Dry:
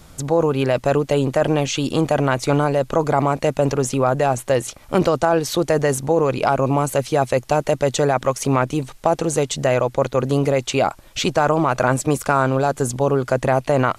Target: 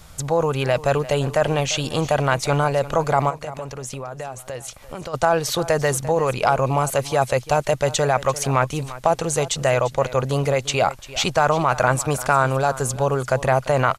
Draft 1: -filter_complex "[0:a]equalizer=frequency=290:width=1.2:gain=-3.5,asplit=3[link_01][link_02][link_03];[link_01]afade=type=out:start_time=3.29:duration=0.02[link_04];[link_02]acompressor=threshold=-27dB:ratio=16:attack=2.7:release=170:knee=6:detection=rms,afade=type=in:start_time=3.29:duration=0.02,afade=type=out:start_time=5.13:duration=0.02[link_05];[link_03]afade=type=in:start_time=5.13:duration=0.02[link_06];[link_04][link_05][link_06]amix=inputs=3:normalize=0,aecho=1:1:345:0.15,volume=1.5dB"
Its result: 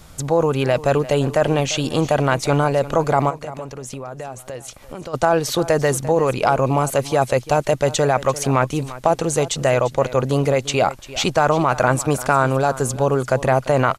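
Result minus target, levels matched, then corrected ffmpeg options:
250 Hz band +3.0 dB
-filter_complex "[0:a]equalizer=frequency=290:width=1.2:gain=-10.5,asplit=3[link_01][link_02][link_03];[link_01]afade=type=out:start_time=3.29:duration=0.02[link_04];[link_02]acompressor=threshold=-27dB:ratio=16:attack=2.7:release=170:knee=6:detection=rms,afade=type=in:start_time=3.29:duration=0.02,afade=type=out:start_time=5.13:duration=0.02[link_05];[link_03]afade=type=in:start_time=5.13:duration=0.02[link_06];[link_04][link_05][link_06]amix=inputs=3:normalize=0,aecho=1:1:345:0.15,volume=1.5dB"

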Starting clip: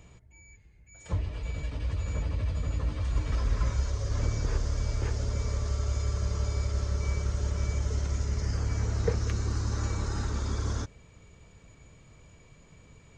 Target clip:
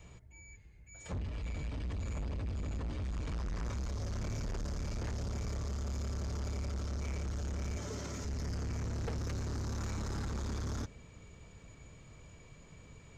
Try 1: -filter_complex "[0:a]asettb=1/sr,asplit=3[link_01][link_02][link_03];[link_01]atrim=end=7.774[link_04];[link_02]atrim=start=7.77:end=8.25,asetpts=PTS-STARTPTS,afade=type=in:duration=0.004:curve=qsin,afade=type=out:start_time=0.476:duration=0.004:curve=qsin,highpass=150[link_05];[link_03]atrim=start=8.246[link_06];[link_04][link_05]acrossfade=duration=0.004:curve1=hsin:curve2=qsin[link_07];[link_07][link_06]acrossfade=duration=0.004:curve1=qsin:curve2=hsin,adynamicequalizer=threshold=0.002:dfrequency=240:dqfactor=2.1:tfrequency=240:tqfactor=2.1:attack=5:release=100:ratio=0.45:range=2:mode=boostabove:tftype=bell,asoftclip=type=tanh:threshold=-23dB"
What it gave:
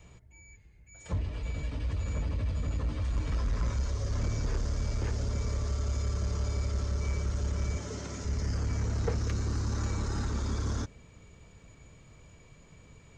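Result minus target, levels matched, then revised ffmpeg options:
soft clipping: distortion −10 dB
-filter_complex "[0:a]asettb=1/sr,asplit=3[link_01][link_02][link_03];[link_01]atrim=end=7.774[link_04];[link_02]atrim=start=7.77:end=8.25,asetpts=PTS-STARTPTS,afade=type=in:duration=0.004:curve=qsin,afade=type=out:start_time=0.476:duration=0.004:curve=qsin,highpass=150[link_05];[link_03]atrim=start=8.246[link_06];[link_04][link_05]acrossfade=duration=0.004:curve1=hsin:curve2=qsin[link_07];[link_07][link_06]acrossfade=duration=0.004:curve1=qsin:curve2=hsin,adynamicequalizer=threshold=0.002:dfrequency=240:dqfactor=2.1:tfrequency=240:tqfactor=2.1:attack=5:release=100:ratio=0.45:range=2:mode=boostabove:tftype=bell,asoftclip=type=tanh:threshold=-34.5dB"

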